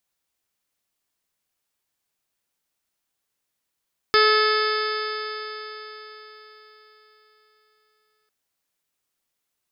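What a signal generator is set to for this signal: stretched partials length 4.15 s, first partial 428 Hz, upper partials -16/0.5/-2.5/-8.5/-14/-14/-8.5/-17/-7.5/-4.5 dB, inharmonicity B 0.0012, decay 4.36 s, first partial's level -18 dB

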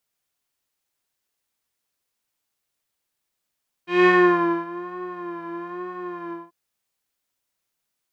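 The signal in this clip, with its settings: synth patch with vibrato F4, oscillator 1 square, interval 0 st, detune 19 cents, oscillator 2 level -2.5 dB, noise -19.5 dB, filter lowpass, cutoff 960 Hz, Q 2.3, filter envelope 1.5 oct, filter decay 0.52 s, filter sustain 30%, attack 0.193 s, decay 0.60 s, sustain -19.5 dB, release 0.20 s, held 2.44 s, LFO 1.1 Hz, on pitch 56 cents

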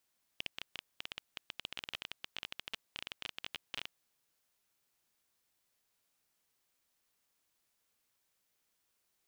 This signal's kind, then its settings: random clicks 17/s -22.5 dBFS 3.54 s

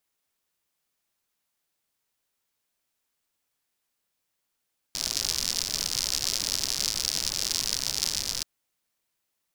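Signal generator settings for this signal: rain from filtered ticks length 3.48 s, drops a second 100, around 5100 Hz, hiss -13 dB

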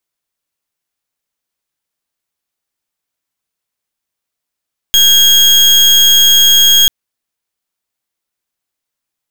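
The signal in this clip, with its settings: pulse 3270 Hz, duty 34% -7 dBFS 1.94 s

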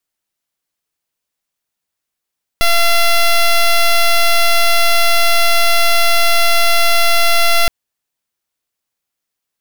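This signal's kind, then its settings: pulse 683 Hz, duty 9% -10 dBFS 5.07 s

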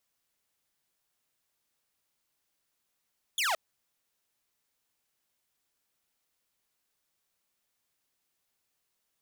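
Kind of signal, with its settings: laser zap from 3600 Hz, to 590 Hz, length 0.17 s saw, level -23.5 dB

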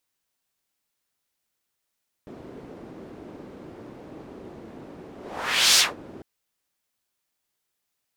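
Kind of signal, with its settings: whoosh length 3.95 s, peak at 3.51, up 0.66 s, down 0.19 s, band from 330 Hz, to 5100 Hz, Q 1.4, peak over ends 26 dB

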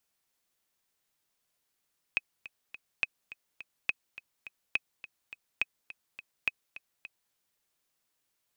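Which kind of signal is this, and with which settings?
metronome 209 bpm, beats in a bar 3, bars 6, 2540 Hz, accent 16.5 dB -13.5 dBFS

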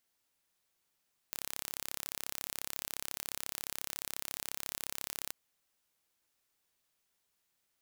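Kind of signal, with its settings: pulse train 34.2/s, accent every 0, -11 dBFS 4.00 s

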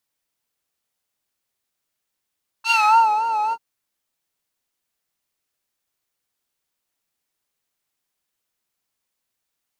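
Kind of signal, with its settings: synth patch with vibrato A5, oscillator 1 square, oscillator 2 saw, interval +7 st, oscillator 2 level -2 dB, sub -28 dB, noise -10 dB, filter bandpass, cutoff 220 Hz, Q 1.8, filter envelope 4 oct, filter decay 0.44 s, filter sustain 35%, attack 66 ms, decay 0.53 s, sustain -6.5 dB, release 0.05 s, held 0.89 s, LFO 3.6 Hz, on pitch 78 cents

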